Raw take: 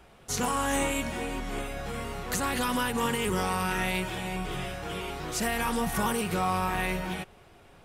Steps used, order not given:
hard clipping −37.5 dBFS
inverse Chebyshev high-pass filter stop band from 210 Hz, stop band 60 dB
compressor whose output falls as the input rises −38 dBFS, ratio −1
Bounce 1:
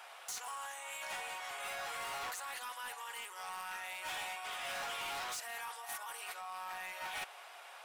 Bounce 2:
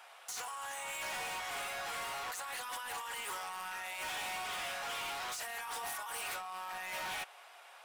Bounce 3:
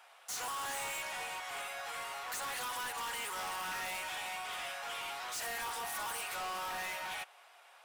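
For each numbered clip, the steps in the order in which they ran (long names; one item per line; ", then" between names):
compressor whose output falls as the input rises, then inverse Chebyshev high-pass filter, then hard clipping
inverse Chebyshev high-pass filter, then compressor whose output falls as the input rises, then hard clipping
inverse Chebyshev high-pass filter, then hard clipping, then compressor whose output falls as the input rises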